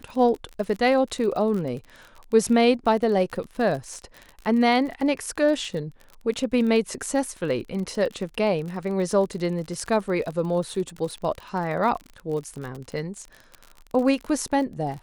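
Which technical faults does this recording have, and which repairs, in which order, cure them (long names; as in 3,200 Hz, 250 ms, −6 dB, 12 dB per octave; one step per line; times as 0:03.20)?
surface crackle 38 per second −31 dBFS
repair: click removal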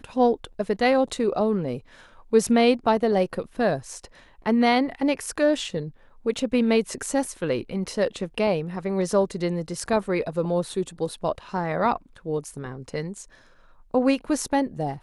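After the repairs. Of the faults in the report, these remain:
none of them is left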